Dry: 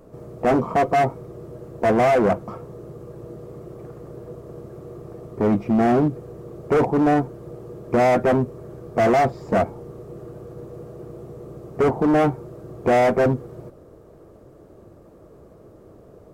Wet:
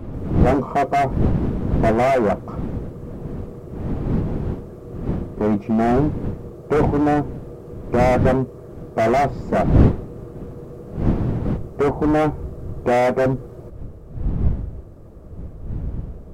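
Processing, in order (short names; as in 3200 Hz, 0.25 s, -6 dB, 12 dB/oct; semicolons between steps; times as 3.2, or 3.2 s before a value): wind noise 200 Hz -24 dBFS, from 11.56 s 97 Hz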